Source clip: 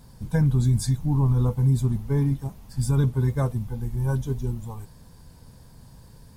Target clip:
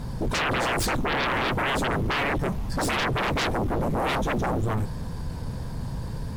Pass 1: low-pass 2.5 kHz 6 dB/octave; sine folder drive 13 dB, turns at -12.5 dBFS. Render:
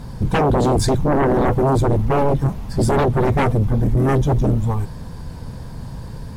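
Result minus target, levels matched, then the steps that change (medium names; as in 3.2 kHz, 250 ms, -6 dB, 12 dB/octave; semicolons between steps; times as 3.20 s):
sine folder: distortion -16 dB
change: sine folder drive 13 dB, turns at -22 dBFS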